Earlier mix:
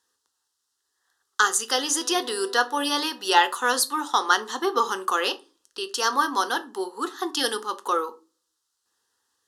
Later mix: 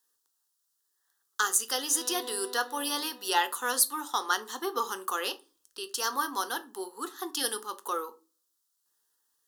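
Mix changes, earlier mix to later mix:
speech -8.5 dB; master: remove air absorption 61 m

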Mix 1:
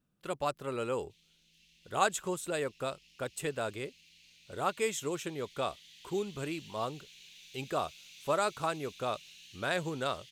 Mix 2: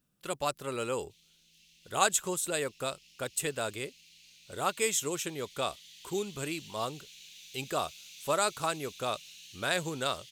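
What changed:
background -3.0 dB; master: add high shelf 3400 Hz +11 dB

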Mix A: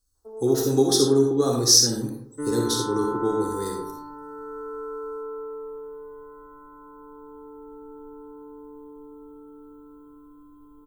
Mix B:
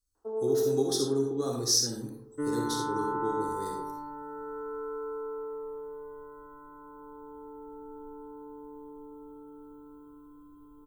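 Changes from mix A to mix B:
speech -9.5 dB; first sound +5.5 dB; second sound: send -10.0 dB

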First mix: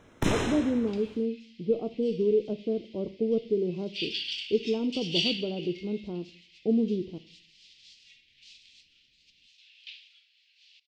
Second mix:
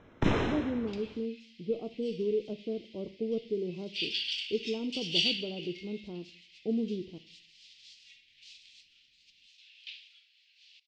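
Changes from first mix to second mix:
speech -6.0 dB; first sound: add air absorption 190 m

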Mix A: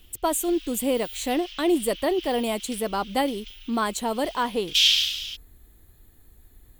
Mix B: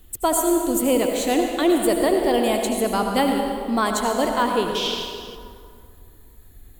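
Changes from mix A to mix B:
background -10.0 dB; reverb: on, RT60 2.3 s

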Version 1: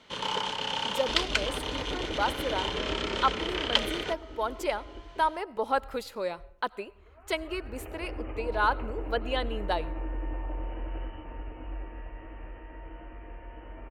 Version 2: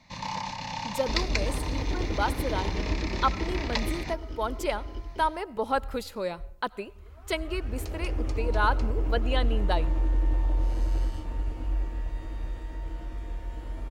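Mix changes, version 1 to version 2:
first sound: add fixed phaser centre 2100 Hz, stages 8; second sound: remove Chebyshev low-pass 3000 Hz, order 8; master: add tone controls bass +9 dB, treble +3 dB

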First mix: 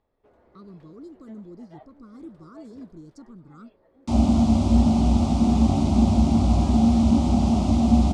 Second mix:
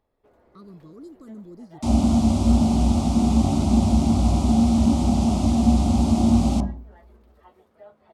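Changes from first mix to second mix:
second sound: entry -2.25 s; master: remove air absorption 58 m

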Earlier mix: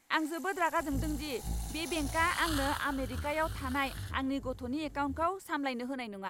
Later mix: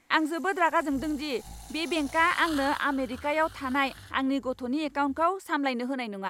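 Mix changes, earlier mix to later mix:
speech +6.5 dB; second sound -9.5 dB; master: add high shelf 9400 Hz -6.5 dB

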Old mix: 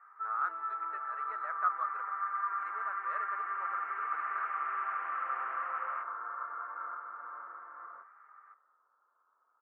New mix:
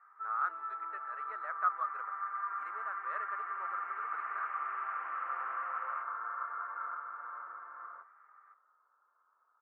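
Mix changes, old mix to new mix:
first sound -3.5 dB; second sound: add tilt +2.5 dB/oct

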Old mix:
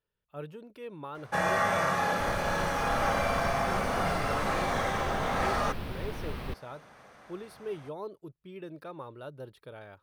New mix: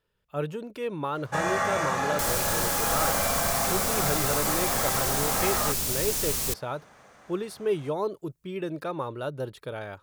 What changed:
speech +10.5 dB; second sound: remove air absorption 470 m; master: add bell 7100 Hz +9 dB 0.46 oct

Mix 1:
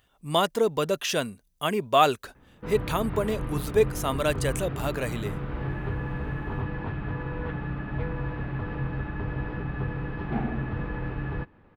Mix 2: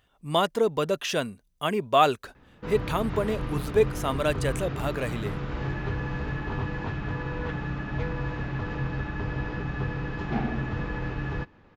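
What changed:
background: remove air absorption 380 m; master: add high shelf 6400 Hz -7 dB

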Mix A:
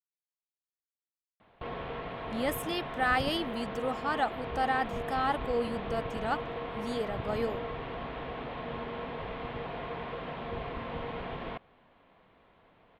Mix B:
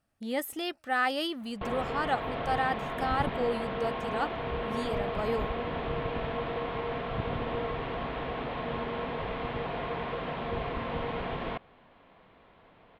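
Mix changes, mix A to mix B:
speech: entry -2.10 s; background +4.0 dB

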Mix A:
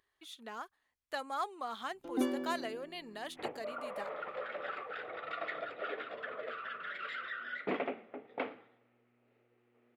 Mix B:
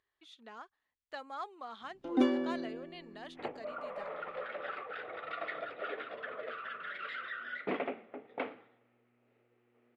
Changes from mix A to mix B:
speech -5.0 dB; first sound +5.0 dB; master: add LPF 5100 Hz 12 dB/oct

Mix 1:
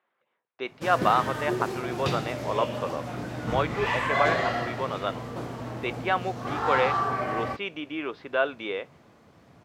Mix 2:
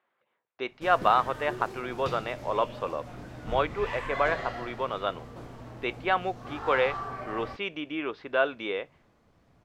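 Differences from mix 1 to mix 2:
background -9.5 dB; master: remove HPF 100 Hz 12 dB/oct

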